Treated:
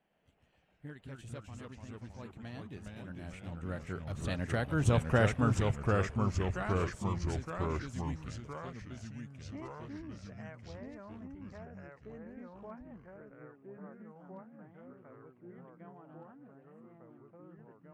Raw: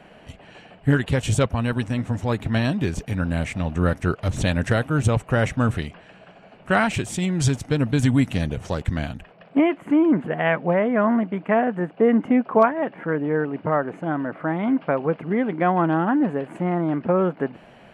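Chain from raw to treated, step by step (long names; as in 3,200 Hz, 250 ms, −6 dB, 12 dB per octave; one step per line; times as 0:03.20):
source passing by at 0:05.12, 13 m/s, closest 4.4 metres
delay with pitch and tempo change per echo 113 ms, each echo −2 semitones, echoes 3
level −6.5 dB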